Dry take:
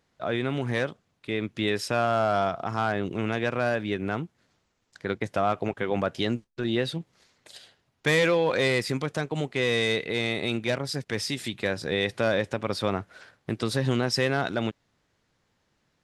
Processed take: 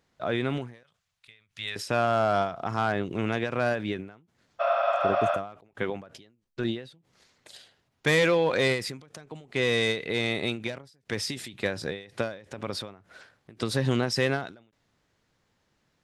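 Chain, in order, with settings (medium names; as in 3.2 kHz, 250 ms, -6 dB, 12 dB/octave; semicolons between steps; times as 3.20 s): 0.83–1.76 s: amplifier tone stack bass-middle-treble 10-0-10; 4.63–5.35 s: spectral replace 520–5800 Hz after; endings held to a fixed fall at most 120 dB/s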